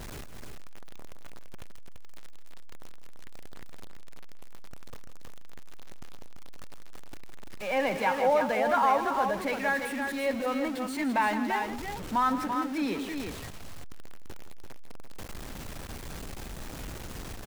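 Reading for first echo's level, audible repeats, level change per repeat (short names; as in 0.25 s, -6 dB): -12.0 dB, 2, no steady repeat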